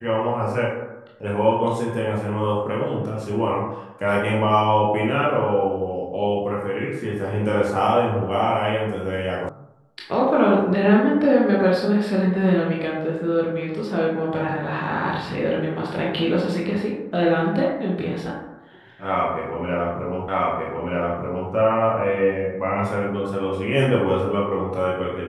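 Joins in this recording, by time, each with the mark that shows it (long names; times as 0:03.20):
0:09.49: cut off before it has died away
0:20.28: the same again, the last 1.23 s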